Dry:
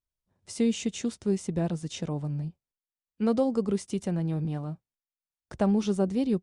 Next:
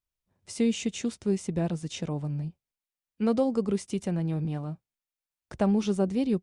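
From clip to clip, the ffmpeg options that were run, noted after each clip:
-af "equalizer=f=2.4k:t=o:w=0.52:g=3"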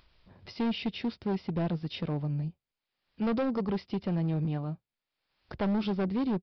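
-af "acompressor=mode=upward:threshold=-40dB:ratio=2.5,aresample=11025,asoftclip=type=hard:threshold=-25.5dB,aresample=44100"

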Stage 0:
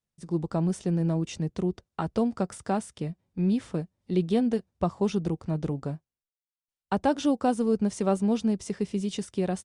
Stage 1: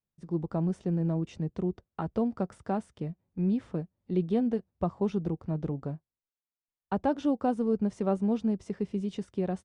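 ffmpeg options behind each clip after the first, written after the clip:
-af "lowpass=f=1.4k:p=1,volume=-2.5dB"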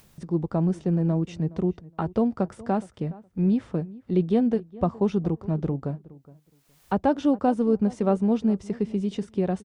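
-filter_complex "[0:a]acompressor=mode=upward:threshold=-40dB:ratio=2.5,asplit=2[a][b];[b]adelay=417,lowpass=f=2k:p=1,volume=-20dB,asplit=2[c][d];[d]adelay=417,lowpass=f=2k:p=1,volume=0.18[e];[a][c][e]amix=inputs=3:normalize=0,volume=5.5dB"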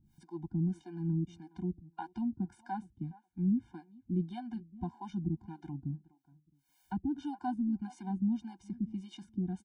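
-filter_complex "[0:a]acrossover=split=400[a][b];[a]aeval=exprs='val(0)*(1-1/2+1/2*cos(2*PI*1.7*n/s))':c=same[c];[b]aeval=exprs='val(0)*(1-1/2-1/2*cos(2*PI*1.7*n/s))':c=same[d];[c][d]amix=inputs=2:normalize=0,afftfilt=real='re*eq(mod(floor(b*sr/1024/350),2),0)':imag='im*eq(mod(floor(b*sr/1024/350),2),0)':win_size=1024:overlap=0.75,volume=-6dB"

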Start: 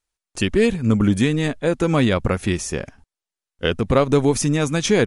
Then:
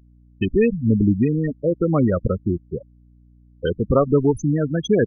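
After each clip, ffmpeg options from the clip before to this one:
-af "afftfilt=real='re*gte(hypot(re,im),0.282)':imag='im*gte(hypot(re,im),0.282)':win_size=1024:overlap=0.75,aeval=exprs='val(0)+0.00316*(sin(2*PI*60*n/s)+sin(2*PI*2*60*n/s)/2+sin(2*PI*3*60*n/s)/3+sin(2*PI*4*60*n/s)/4+sin(2*PI*5*60*n/s)/5)':c=same"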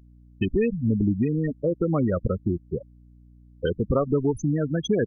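-af "acompressor=threshold=-23dB:ratio=2"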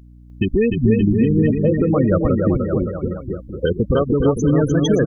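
-filter_complex "[0:a]alimiter=limit=-16.5dB:level=0:latency=1:release=172,asplit=2[a][b];[b]aecho=0:1:300|570|813|1032|1229:0.631|0.398|0.251|0.158|0.1[c];[a][c]amix=inputs=2:normalize=0,volume=8dB"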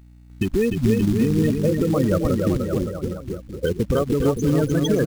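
-af "acrusher=bits=5:mode=log:mix=0:aa=0.000001,volume=-3.5dB"

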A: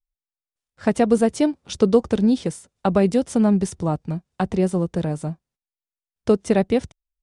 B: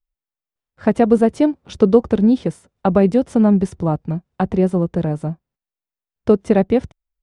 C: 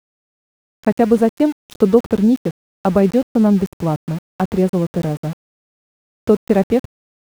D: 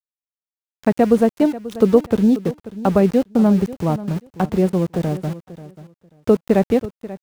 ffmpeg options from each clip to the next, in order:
-af "equalizer=f=8k:w=0.41:g=-13,volume=4dB"
-af "aeval=exprs='val(0)*gte(abs(val(0)),0.0376)':c=same"
-af "aecho=1:1:537|1074:0.158|0.0285,volume=-1dB"

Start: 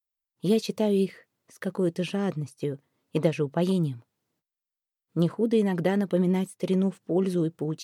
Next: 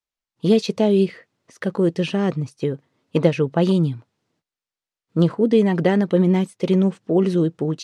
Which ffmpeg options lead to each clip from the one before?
-af "lowpass=6.3k,volume=7dB"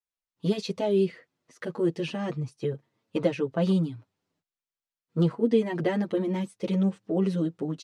-filter_complex "[0:a]asplit=2[a][b];[b]adelay=7.3,afreqshift=-0.27[c];[a][c]amix=inputs=2:normalize=1,volume=-4.5dB"

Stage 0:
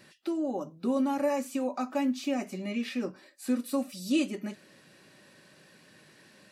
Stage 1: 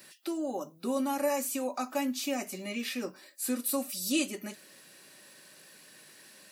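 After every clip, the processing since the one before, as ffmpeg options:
-af "aemphasis=mode=production:type=bsi"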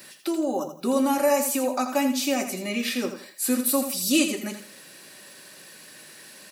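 -af "aecho=1:1:83|166|249:0.355|0.103|0.0298,volume=7.5dB"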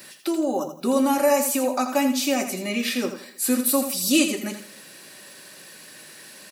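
-filter_complex "[0:a]asplit=2[a][b];[b]adelay=303.2,volume=-29dB,highshelf=f=4k:g=-6.82[c];[a][c]amix=inputs=2:normalize=0,volume=2dB"

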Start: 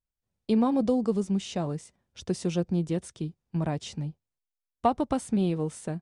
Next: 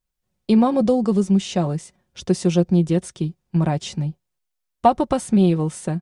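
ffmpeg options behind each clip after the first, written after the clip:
-af "aecho=1:1:5.5:0.4,volume=7.5dB"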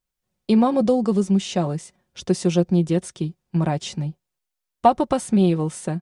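-af "lowshelf=f=130:g=-5.5"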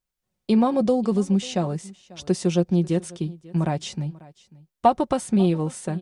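-af "aecho=1:1:542:0.0841,volume=-2dB"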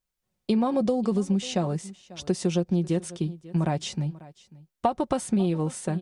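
-af "acompressor=threshold=-20dB:ratio=6"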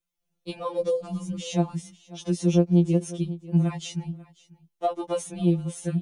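-af "afftfilt=real='re*2.83*eq(mod(b,8),0)':imag='im*2.83*eq(mod(b,8),0)':win_size=2048:overlap=0.75"

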